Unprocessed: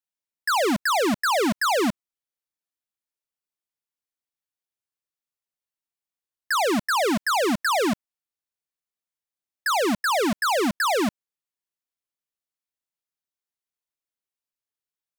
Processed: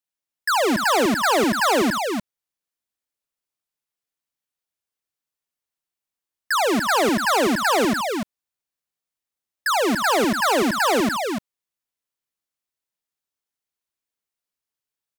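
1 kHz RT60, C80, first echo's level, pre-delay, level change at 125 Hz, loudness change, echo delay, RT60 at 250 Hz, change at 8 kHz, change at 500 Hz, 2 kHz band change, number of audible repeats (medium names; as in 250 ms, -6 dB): no reverb, no reverb, -14.5 dB, no reverb, +3.5 dB, +3.0 dB, 76 ms, no reverb, +3.5 dB, +3.5 dB, +3.5 dB, 2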